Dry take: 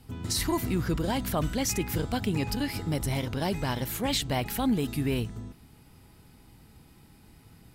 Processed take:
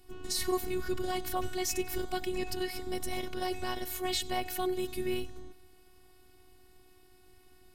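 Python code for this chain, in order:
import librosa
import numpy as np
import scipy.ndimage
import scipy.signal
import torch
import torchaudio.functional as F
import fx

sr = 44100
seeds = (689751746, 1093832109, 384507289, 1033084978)

y = fx.robotise(x, sr, hz=366.0)
y = fx.echo_feedback(y, sr, ms=94, feedback_pct=53, wet_db=-22.0)
y = y * librosa.db_to_amplitude(-1.5)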